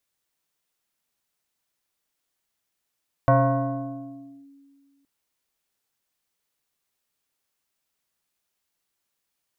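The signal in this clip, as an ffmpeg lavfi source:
-f lavfi -i "aevalsrc='0.237*pow(10,-3*t/2.06)*sin(2*PI*278*t+2*clip(1-t/1.19,0,1)*sin(2*PI*1.46*278*t))':d=1.77:s=44100"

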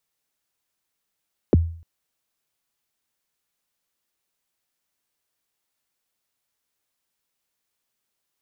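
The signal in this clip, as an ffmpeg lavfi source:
-f lavfi -i "aevalsrc='0.355*pow(10,-3*t/0.49)*sin(2*PI*(540*0.022/log(83/540)*(exp(log(83/540)*min(t,0.022)/0.022)-1)+83*max(t-0.022,0)))':d=0.3:s=44100"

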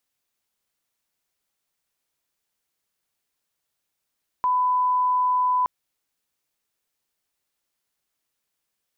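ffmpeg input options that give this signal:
-f lavfi -i "sine=f=1000:d=1.22:r=44100,volume=0.06dB"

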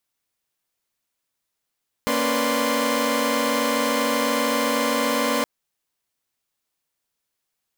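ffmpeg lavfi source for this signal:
-f lavfi -i "aevalsrc='0.0631*((2*mod(233.08*t,1)-1)+(2*mod(277.18*t,1)-1)+(2*mod(493.88*t,1)-1)+(2*mod(587.33*t,1)-1)+(2*mod(1046.5*t,1)-1))':d=3.37:s=44100"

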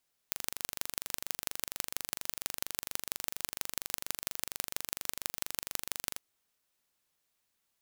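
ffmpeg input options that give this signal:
-f lavfi -i "aevalsrc='0.668*eq(mod(n,1815),0)*(0.5+0.5*eq(mod(n,7260),0))':d=5.88:s=44100"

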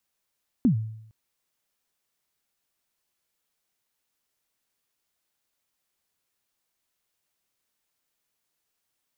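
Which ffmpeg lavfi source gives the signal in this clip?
-f lavfi -i "aevalsrc='0.2*pow(10,-3*t/0.74)*sin(2*PI*(280*0.102/log(110/280)*(exp(log(110/280)*min(t,0.102)/0.102)-1)+110*max(t-0.102,0)))':d=0.46:s=44100"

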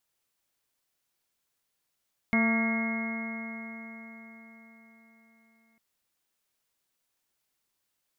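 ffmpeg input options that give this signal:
-f lavfi -i "aevalsrc='0.0708*pow(10,-3*t/4.65)*sin(2*PI*224.2*t)+0.0106*pow(10,-3*t/4.65)*sin(2*PI*449.61*t)+0.0224*pow(10,-3*t/4.65)*sin(2*PI*677.42*t)+0.0106*pow(10,-3*t/4.65)*sin(2*PI*908.81*t)+0.0141*pow(10,-3*t/4.65)*sin(2*PI*1144.92*t)+0.00891*pow(10,-3*t/4.65)*sin(2*PI*1386.86*t)+0.01*pow(10,-3*t/4.65)*sin(2*PI*1635.69*t)+0.00794*pow(10,-3*t/4.65)*sin(2*PI*1892.41*t)+0.0562*pow(10,-3*t/4.65)*sin(2*PI*2157.97*t)':d=3.45:s=44100"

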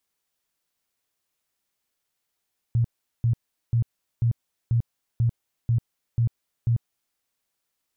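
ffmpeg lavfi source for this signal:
-f lavfi -i "aevalsrc='0.133*sin(2*PI*117*mod(t,0.49))*lt(mod(t,0.49),11/117)':d=4.41:s=44100"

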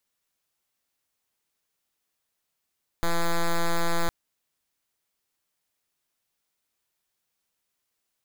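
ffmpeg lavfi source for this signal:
-f lavfi -i "aevalsrc='0.075*(2*lt(mod(169*t,1),0.06)-1)':d=1.06:s=44100"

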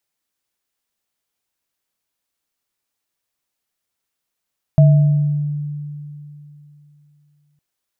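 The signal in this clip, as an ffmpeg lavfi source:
-f lavfi -i "aevalsrc='0.531*pow(10,-3*t/3.09)*sin(2*PI*147*t)+0.141*pow(10,-3*t/0.94)*sin(2*PI*644*t)':d=2.81:s=44100"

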